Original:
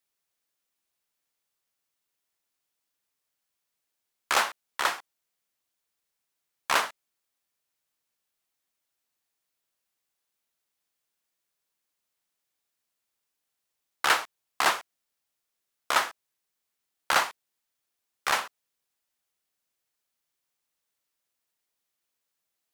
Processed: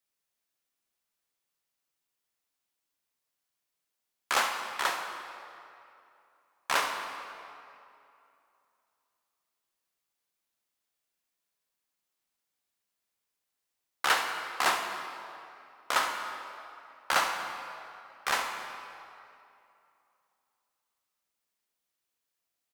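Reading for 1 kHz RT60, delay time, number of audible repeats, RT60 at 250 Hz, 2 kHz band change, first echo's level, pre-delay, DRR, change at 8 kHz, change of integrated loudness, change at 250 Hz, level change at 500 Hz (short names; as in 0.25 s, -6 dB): 2.7 s, 70 ms, 1, 2.6 s, -2.0 dB, -12.0 dB, 3 ms, 3.0 dB, -2.5 dB, -3.5 dB, -1.5 dB, -2.0 dB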